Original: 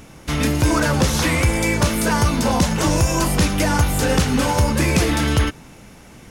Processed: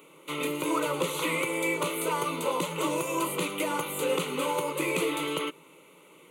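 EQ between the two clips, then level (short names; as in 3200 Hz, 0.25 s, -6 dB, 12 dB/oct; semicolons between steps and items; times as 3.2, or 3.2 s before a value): elliptic high-pass 170 Hz, stop band 50 dB; fixed phaser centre 1100 Hz, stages 8; notch 1800 Hz, Q 18; -4.5 dB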